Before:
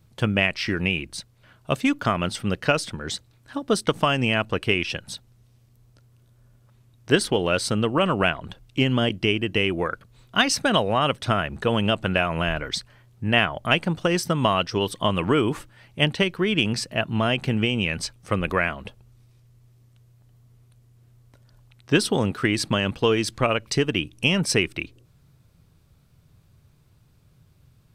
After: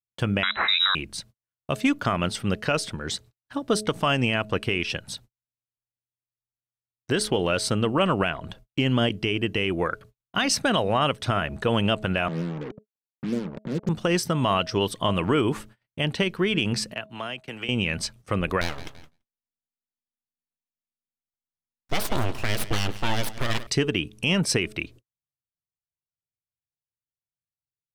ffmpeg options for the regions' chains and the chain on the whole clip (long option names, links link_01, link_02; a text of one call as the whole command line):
ffmpeg -i in.wav -filter_complex "[0:a]asettb=1/sr,asplit=3[link_01][link_02][link_03];[link_01]atrim=end=0.434[link_04];[link_02]atrim=start=0.43:end=0.95,asetpts=PTS-STARTPTS,afade=type=in:duration=0.004:curve=qsin,afade=type=out:start_time=0.516:duration=0.004:curve=qsin,acontrast=79,lowpass=frequency=3400:width_type=q:width=0.5098,lowpass=frequency=3400:width_type=q:width=0.6013,lowpass=frequency=3400:width_type=q:width=0.9,lowpass=frequency=3400:width_type=q:width=2.563,afreqshift=-4000[link_05];[link_03]atrim=start=0.946[link_06];[link_04][link_05]acrossfade=duration=0.004:curve1=hsin:curve2=qsin[link_07];[link_07][link_06]acrossfade=duration=0.004:curve1=qsin:curve2=hsin,asettb=1/sr,asplit=3[link_08][link_09][link_10];[link_08]atrim=end=12.284[link_11];[link_09]atrim=start=12.28:end=13.89,asetpts=PTS-STARTPTS,afade=type=in:duration=0.004:curve=qsin,afade=type=out:start_time=1.606:duration=0.004:curve=qsin,acompressor=mode=upward:threshold=-22dB:ratio=2.5:attack=3.2:release=140:knee=2.83:detection=peak,asuperpass=centerf=260:order=12:qfactor=0.72,acrusher=bits=5:mix=0:aa=0.5[link_12];[link_10]atrim=start=13.886[link_13];[link_11][link_12]acrossfade=duration=0.004:curve1=hsin:curve2=qsin[link_14];[link_14][link_13]acrossfade=duration=0.004:curve1=qsin:curve2=hsin,asettb=1/sr,asplit=3[link_15][link_16][link_17];[link_15]atrim=end=16.944[link_18];[link_16]atrim=start=16.94:end=17.69,asetpts=PTS-STARTPTS,afade=type=in:duration=0.004:curve=qsin,afade=type=out:start_time=0.746:duration=0.004:curve=qsin,agate=range=-33dB:threshold=-27dB:ratio=3:release=100:detection=peak,lowshelf=frequency=470:gain=-11,acrossover=split=150|310[link_19][link_20][link_21];[link_19]acompressor=threshold=-51dB:ratio=4[link_22];[link_20]acompressor=threshold=-45dB:ratio=4[link_23];[link_21]acompressor=threshold=-31dB:ratio=4[link_24];[link_22][link_23][link_24]amix=inputs=3:normalize=0[link_25];[link_17]atrim=start=17.686[link_26];[link_18][link_25]acrossfade=duration=0.004:curve1=hsin:curve2=qsin[link_27];[link_27][link_26]acrossfade=duration=0.004:curve1=qsin:curve2=hsin,asettb=1/sr,asplit=3[link_28][link_29][link_30];[link_28]atrim=end=18.614[link_31];[link_29]atrim=start=18.61:end=23.67,asetpts=PTS-STARTPTS,afade=type=in:duration=0.004:curve=qsin,afade=type=out:start_time=5.056:duration=0.004:curve=qsin,aeval=exprs='abs(val(0))':channel_layout=same,aecho=1:1:168|336|504:0.141|0.0579|0.0237,atrim=end_sample=223146[link_32];[link_30]atrim=start=23.666[link_33];[link_31][link_32]acrossfade=duration=0.004:curve1=hsin:curve2=qsin[link_34];[link_34][link_33]acrossfade=duration=0.004:curve1=qsin:curve2=hsin,bandreject=frequency=213.3:width_type=h:width=4,bandreject=frequency=426.6:width_type=h:width=4,bandreject=frequency=639.9:width_type=h:width=4,agate=range=-48dB:threshold=-45dB:ratio=16:detection=peak,alimiter=limit=-12dB:level=0:latency=1:release=48" out.wav